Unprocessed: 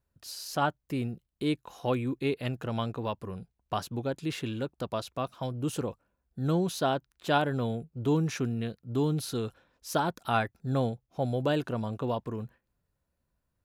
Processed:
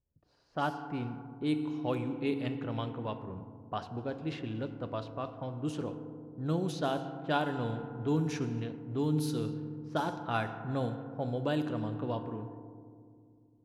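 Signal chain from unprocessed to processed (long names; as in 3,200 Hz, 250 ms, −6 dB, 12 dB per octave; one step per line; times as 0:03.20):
feedback delay network reverb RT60 2.6 s, low-frequency decay 1.3×, high-frequency decay 0.65×, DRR 7.5 dB
low-pass that shuts in the quiet parts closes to 570 Hz, open at −22 dBFS
level −5 dB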